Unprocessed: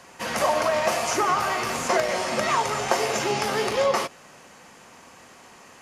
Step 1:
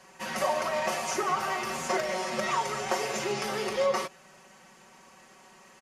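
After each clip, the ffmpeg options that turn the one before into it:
ffmpeg -i in.wav -af "aecho=1:1:5.3:0.84,volume=-8.5dB" out.wav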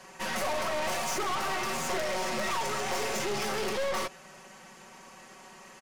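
ffmpeg -i in.wav -af "aeval=exprs='(tanh(63.1*val(0)+0.6)-tanh(0.6))/63.1':channel_layout=same,volume=7dB" out.wav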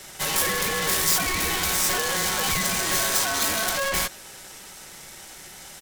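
ffmpeg -i in.wav -af "aemphasis=mode=production:type=75fm,aeval=exprs='val(0)*sin(2*PI*1100*n/s)':channel_layout=same,volume=6.5dB" out.wav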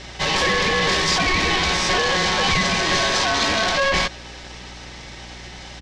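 ffmpeg -i in.wav -af "aeval=exprs='val(0)+0.00398*(sin(2*PI*60*n/s)+sin(2*PI*2*60*n/s)/2+sin(2*PI*3*60*n/s)/3+sin(2*PI*4*60*n/s)/4+sin(2*PI*5*60*n/s)/5)':channel_layout=same,lowpass=frequency=5100:width=0.5412,lowpass=frequency=5100:width=1.3066,bandreject=frequency=1400:width=7,volume=7.5dB" out.wav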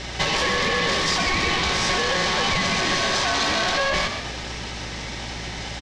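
ffmpeg -i in.wav -filter_complex "[0:a]acompressor=threshold=-24dB:ratio=6,asplit=6[link_01][link_02][link_03][link_04][link_05][link_06];[link_02]adelay=125,afreqshift=51,volume=-7dB[link_07];[link_03]adelay=250,afreqshift=102,volume=-14.1dB[link_08];[link_04]adelay=375,afreqshift=153,volume=-21.3dB[link_09];[link_05]adelay=500,afreqshift=204,volume=-28.4dB[link_10];[link_06]adelay=625,afreqshift=255,volume=-35.5dB[link_11];[link_01][link_07][link_08][link_09][link_10][link_11]amix=inputs=6:normalize=0,volume=4.5dB" out.wav

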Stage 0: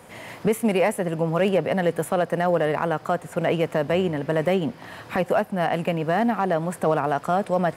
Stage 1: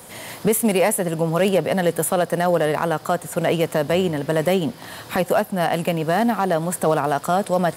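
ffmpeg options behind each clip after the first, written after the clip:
ffmpeg -i in.wav -af "aexciter=amount=1.8:drive=8:freq=3400,volume=2.5dB" out.wav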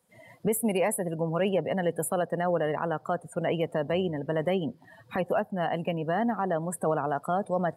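ffmpeg -i in.wav -af "afftdn=noise_reduction=23:noise_floor=-29,volume=-8dB" out.wav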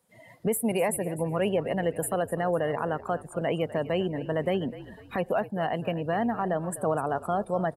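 ffmpeg -i in.wav -filter_complex "[0:a]asplit=4[link_01][link_02][link_03][link_04];[link_02]adelay=251,afreqshift=-52,volume=-15.5dB[link_05];[link_03]adelay=502,afreqshift=-104,volume=-24.6dB[link_06];[link_04]adelay=753,afreqshift=-156,volume=-33.7dB[link_07];[link_01][link_05][link_06][link_07]amix=inputs=4:normalize=0" out.wav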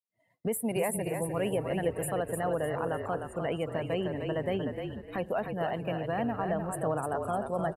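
ffmpeg -i in.wav -filter_complex "[0:a]agate=range=-33dB:threshold=-40dB:ratio=3:detection=peak,asplit=5[link_01][link_02][link_03][link_04][link_05];[link_02]adelay=303,afreqshift=-38,volume=-5.5dB[link_06];[link_03]adelay=606,afreqshift=-76,volume=-15.4dB[link_07];[link_04]adelay=909,afreqshift=-114,volume=-25.3dB[link_08];[link_05]adelay=1212,afreqshift=-152,volume=-35.2dB[link_09];[link_01][link_06][link_07][link_08][link_09]amix=inputs=5:normalize=0,volume=-4.5dB" out.wav

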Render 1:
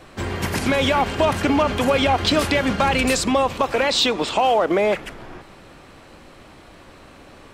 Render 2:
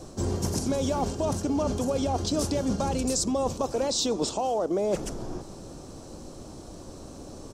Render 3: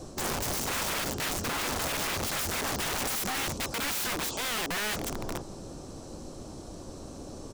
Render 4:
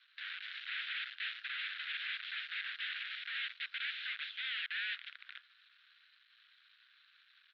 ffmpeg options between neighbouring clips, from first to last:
ffmpeg -i in.wav -af "firequalizer=gain_entry='entry(340,0);entry(2000,-22);entry(5800,6);entry(13000,-5)':delay=0.05:min_phase=1,areverse,acompressor=threshold=-28dB:ratio=10,areverse,volume=4.5dB" out.wav
ffmpeg -i in.wav -af "aeval=exprs='(mod(21.1*val(0)+1,2)-1)/21.1':channel_layout=same" out.wav
ffmpeg -i in.wav -af "aeval=exprs='if(lt(val(0),0),0.251*val(0),val(0))':channel_layout=same,asuperpass=centerf=2400:order=12:qfactor=1" out.wav

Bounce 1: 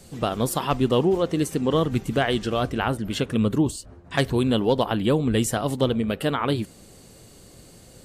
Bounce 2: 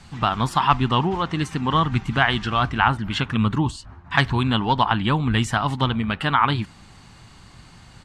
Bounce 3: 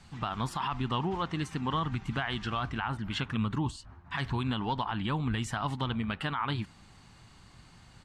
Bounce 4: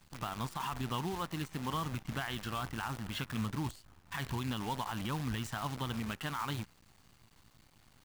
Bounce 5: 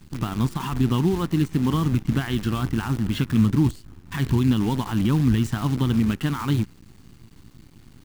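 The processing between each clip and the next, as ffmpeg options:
ffmpeg -i in.wav -af "firequalizer=gain_entry='entry(120,0);entry(500,-16);entry(870,6);entry(14000,-26)':delay=0.05:min_phase=1,volume=4.5dB" out.wav
ffmpeg -i in.wav -af "alimiter=limit=-12.5dB:level=0:latency=1:release=61,volume=-8.5dB" out.wav
ffmpeg -i in.wav -af "acrusher=bits=7:dc=4:mix=0:aa=0.000001,volume=-5.5dB" out.wav
ffmpeg -i in.wav -af "lowshelf=frequency=450:width_type=q:width=1.5:gain=9.5,volume=7dB" out.wav

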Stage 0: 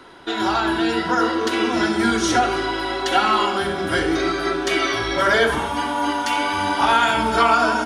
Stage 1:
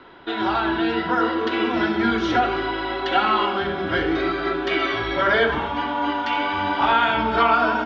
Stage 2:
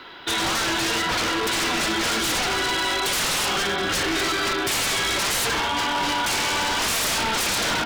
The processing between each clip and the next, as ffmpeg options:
ffmpeg -i in.wav -af "lowpass=frequency=3700:width=0.5412,lowpass=frequency=3700:width=1.3066,volume=-1.5dB" out.wav
ffmpeg -i in.wav -af "crystalizer=i=9.5:c=0,aeval=exprs='0.141*(abs(mod(val(0)/0.141+3,4)-2)-1)':channel_layout=same,volume=-1.5dB" out.wav

